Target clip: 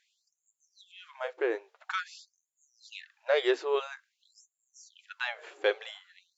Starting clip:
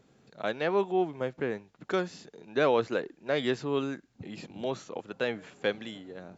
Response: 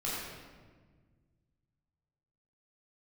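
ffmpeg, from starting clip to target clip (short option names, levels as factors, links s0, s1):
-af "flanger=delay=3.8:depth=2:regen=-68:speed=1:shape=triangular,highshelf=f=5900:g=-7.5,afftfilt=real='re*gte(b*sr/1024,300*pow(6700/300,0.5+0.5*sin(2*PI*0.49*pts/sr)))':imag='im*gte(b*sr/1024,300*pow(6700/300,0.5+0.5*sin(2*PI*0.49*pts/sr)))':win_size=1024:overlap=0.75,volume=2.37"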